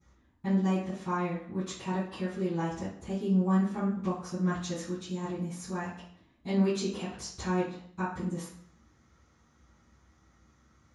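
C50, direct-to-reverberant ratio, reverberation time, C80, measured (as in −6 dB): 2.5 dB, −20.0 dB, 0.60 s, 7.5 dB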